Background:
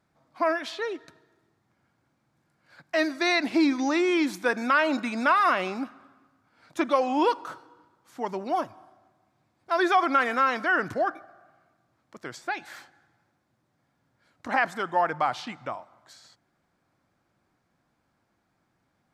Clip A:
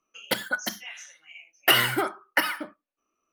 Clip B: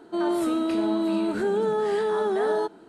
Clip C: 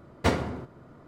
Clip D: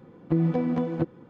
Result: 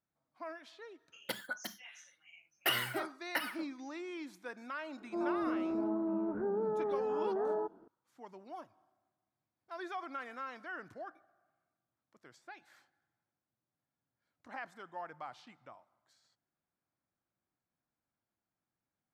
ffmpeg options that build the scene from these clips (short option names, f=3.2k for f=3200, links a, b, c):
-filter_complex "[0:a]volume=-20dB[a];[2:a]lowpass=f=1.3k:w=0.5412,lowpass=f=1.3k:w=1.3066[b];[1:a]atrim=end=3.32,asetpts=PTS-STARTPTS,volume=-12.5dB,afade=t=in:d=0.004:c=hsin,afade=t=out:st=3.316:d=0.004:c=hsin,adelay=980[c];[b]atrim=end=2.88,asetpts=PTS-STARTPTS,volume=-10dB,afade=t=in:d=0.004:c=hsin,afade=t=out:st=2.876:d=0.004:c=hsin,adelay=5000[d];[a][c][d]amix=inputs=3:normalize=0"